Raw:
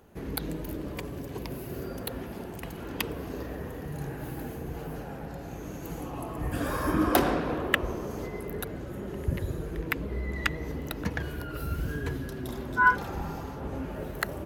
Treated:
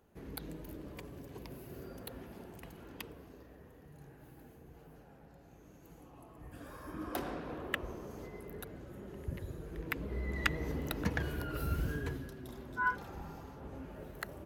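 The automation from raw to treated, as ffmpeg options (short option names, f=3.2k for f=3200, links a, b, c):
-af "volume=5.5dB,afade=t=out:st=2.56:d=0.84:silence=0.398107,afade=t=in:st=6.88:d=0.85:silence=0.398107,afade=t=in:st=9.61:d=1.02:silence=0.375837,afade=t=out:st=11.76:d=0.6:silence=0.354813"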